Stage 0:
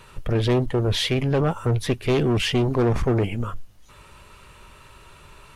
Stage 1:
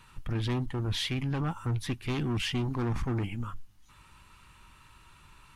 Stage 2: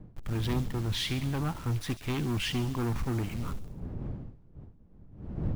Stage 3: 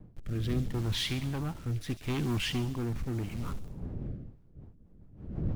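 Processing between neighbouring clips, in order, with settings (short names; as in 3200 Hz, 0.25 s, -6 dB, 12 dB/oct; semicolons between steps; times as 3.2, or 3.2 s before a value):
band shelf 510 Hz -11 dB 1 oct; gain -8 dB
level-crossing sampler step -41.5 dBFS; wind noise 140 Hz -40 dBFS; thin delay 69 ms, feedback 59%, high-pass 3900 Hz, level -9 dB
rotary speaker horn 0.75 Hz, later 6.3 Hz, at 4.02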